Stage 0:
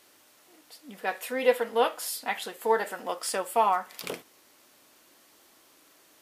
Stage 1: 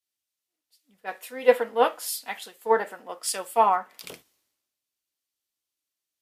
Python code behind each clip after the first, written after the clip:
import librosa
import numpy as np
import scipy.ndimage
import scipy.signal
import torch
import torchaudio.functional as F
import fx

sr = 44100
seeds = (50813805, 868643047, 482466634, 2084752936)

y = fx.band_widen(x, sr, depth_pct=100)
y = y * librosa.db_to_amplitude(-3.5)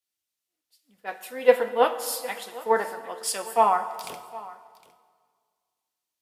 y = x + 10.0 ** (-19.5 / 20.0) * np.pad(x, (int(759 * sr / 1000.0), 0))[:len(x)]
y = fx.rev_plate(y, sr, seeds[0], rt60_s=1.9, hf_ratio=0.75, predelay_ms=0, drr_db=10.5)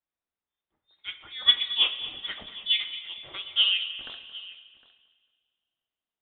y = fx.echo_feedback(x, sr, ms=223, feedback_pct=42, wet_db=-17)
y = fx.freq_invert(y, sr, carrier_hz=3900)
y = y * librosa.db_to_amplitude(-3.5)